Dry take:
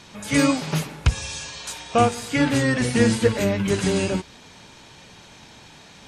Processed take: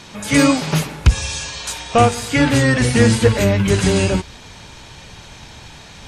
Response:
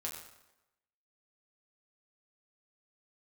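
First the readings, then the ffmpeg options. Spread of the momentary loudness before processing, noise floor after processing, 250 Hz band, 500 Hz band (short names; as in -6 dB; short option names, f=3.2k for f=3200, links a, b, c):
11 LU, -40 dBFS, +5.0 dB, +5.0 dB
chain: -af "asubboost=boost=3.5:cutoff=110,acontrast=74"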